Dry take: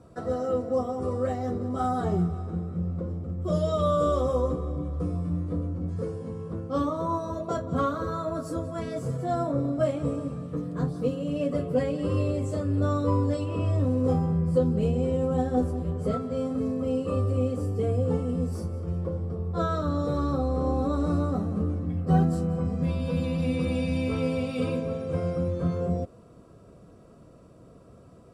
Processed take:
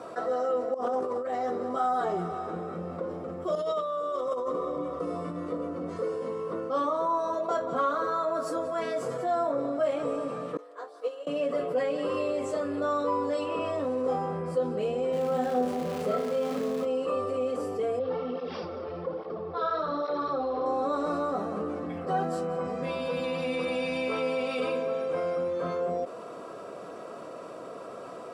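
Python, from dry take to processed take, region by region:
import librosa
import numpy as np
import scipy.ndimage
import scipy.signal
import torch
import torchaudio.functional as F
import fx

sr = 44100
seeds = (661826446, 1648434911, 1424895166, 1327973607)

y = fx.chain(x, sr, fx.peak_eq(hz=280.0, db=4.0, octaves=1.6),
    fx.over_compress(threshold_db=-30.0, ratio=-0.5),
    fx.doppler_dist(depth_ms=0.14), at=(0.74, 1.34))
y = fx.chain(y, sr, fx.over_compress(threshold_db=-28.0, ratio=-0.5),
    fx.notch_comb(f0_hz=810.0), at=(3.55, 6.71))
y = fx.chain(y, sr, fx.highpass(hz=420.0, slope=24),
    fx.notch(hz=2500.0, q=21.0),
    fx.upward_expand(threshold_db=-43.0, expansion=2.5), at=(10.57, 11.27))
y = fx.peak_eq(y, sr, hz=180.0, db=9.5, octaves=0.73, at=(15.12, 16.84), fade=0.02)
y = fx.dmg_crackle(y, sr, seeds[0], per_s=490.0, level_db=-36.0, at=(15.12, 16.84), fade=0.02)
y = fx.room_flutter(y, sr, wall_m=5.5, rt60_s=0.31, at=(15.12, 16.84), fade=0.02)
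y = fx.chain(y, sr, fx.resample_bad(factor=4, down='none', up='filtered'),
    fx.flanger_cancel(hz=1.2, depth_ms=6.9), at=(17.99, 20.66))
y = scipy.signal.sosfilt(scipy.signal.butter(2, 570.0, 'highpass', fs=sr, output='sos'), y)
y = fx.high_shelf(y, sr, hz=4900.0, db=-12.0)
y = fx.env_flatten(y, sr, amount_pct=50)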